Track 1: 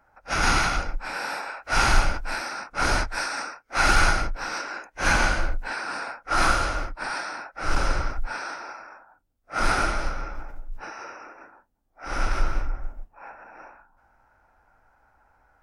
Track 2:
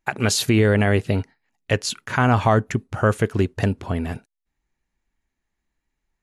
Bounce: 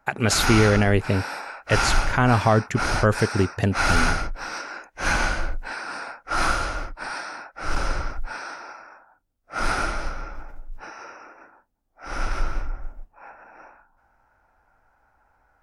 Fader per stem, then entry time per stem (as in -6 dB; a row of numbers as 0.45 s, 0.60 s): -1.5 dB, -1.0 dB; 0.00 s, 0.00 s